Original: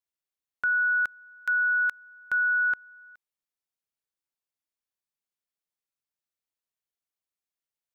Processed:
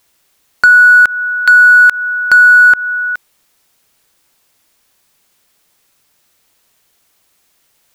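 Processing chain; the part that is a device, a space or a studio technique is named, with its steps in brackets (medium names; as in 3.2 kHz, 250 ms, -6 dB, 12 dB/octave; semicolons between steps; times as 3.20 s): loud club master (compression 2:1, threshold -32 dBFS, peak gain reduction 5.5 dB; hard clipper -26.5 dBFS, distortion -25 dB; loudness maximiser +35 dB); trim -1 dB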